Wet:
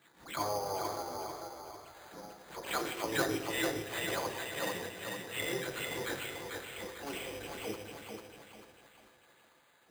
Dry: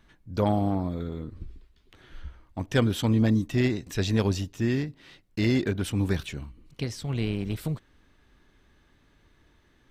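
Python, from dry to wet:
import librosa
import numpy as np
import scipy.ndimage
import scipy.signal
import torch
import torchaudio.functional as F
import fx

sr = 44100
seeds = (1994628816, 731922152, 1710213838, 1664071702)

y = fx.spec_delay(x, sr, highs='early', ms=189)
y = scipy.signal.sosfilt(scipy.signal.butter(2, 2200.0, 'lowpass', fs=sr, output='sos'), y)
y = fx.echo_thinned(y, sr, ms=445, feedback_pct=49, hz=150.0, wet_db=-3)
y = fx.spec_gate(y, sr, threshold_db=-10, keep='weak')
y = scipy.signal.sosfilt(scipy.signal.butter(2, 42.0, 'highpass', fs=sr, output='sos'), y)
y = fx.room_shoebox(y, sr, seeds[0], volume_m3=760.0, walls='mixed', distance_m=0.74)
y = np.repeat(y[::8], 8)[:len(y)]
y = fx.low_shelf(y, sr, hz=260.0, db=-11.5)
y = fx.pre_swell(y, sr, db_per_s=130.0)
y = y * 10.0 ** (1.0 / 20.0)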